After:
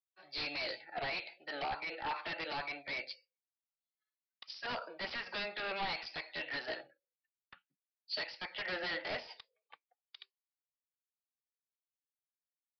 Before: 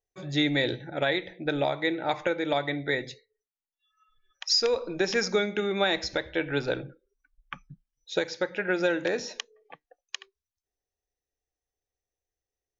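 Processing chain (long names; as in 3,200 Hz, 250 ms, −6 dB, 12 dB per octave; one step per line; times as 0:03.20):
high-pass filter 800 Hz 12 dB per octave
brickwall limiter −23.5 dBFS, peak gain reduction 9.5 dB
formants moved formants +3 semitones
wave folding −33 dBFS
downsampling to 11,025 Hz
multiband upward and downward expander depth 100%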